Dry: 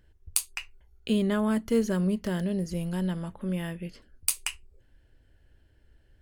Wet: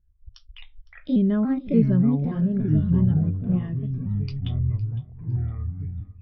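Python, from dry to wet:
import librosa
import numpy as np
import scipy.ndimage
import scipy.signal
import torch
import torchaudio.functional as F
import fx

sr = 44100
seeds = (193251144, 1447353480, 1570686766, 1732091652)

y = fx.pitch_trill(x, sr, semitones=3.5, every_ms=289)
y = scipy.signal.sosfilt(scipy.signal.butter(16, 5500.0, 'lowpass', fs=sr, output='sos'), y)
y = fx.low_shelf(y, sr, hz=150.0, db=8.5)
y = fx.notch(y, sr, hz=480.0, q=12.0)
y = fx.echo_pitch(y, sr, ms=81, semitones=-7, count=2, db_per_echo=-3.0)
y = fx.echo_feedback(y, sr, ms=509, feedback_pct=37, wet_db=-13.5)
y = fx.spectral_expand(y, sr, expansion=1.5)
y = F.gain(torch.from_numpy(y), 3.5).numpy()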